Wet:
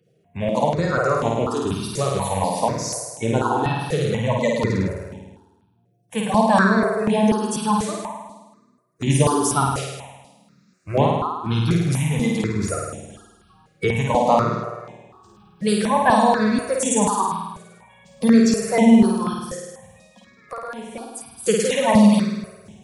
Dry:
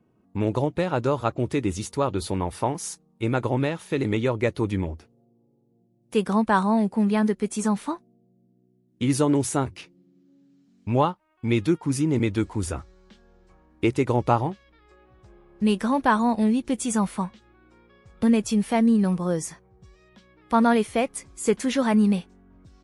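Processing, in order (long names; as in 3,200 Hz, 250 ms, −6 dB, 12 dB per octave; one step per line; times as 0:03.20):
spectral magnitudes quantised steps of 30 dB
high-pass filter 120 Hz 12 dB per octave
mains-hum notches 60/120/180/240/300/360/420 Hz
0:19.33–0:21.46: downward compressor 20 to 1, threshold −34 dBFS, peak gain reduction 19.5 dB
parametric band 310 Hz −10 dB 0.63 octaves
flutter between parallel walls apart 9 metres, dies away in 1.2 s
step-sequenced phaser 4.1 Hz 250–4,600 Hz
level +7.5 dB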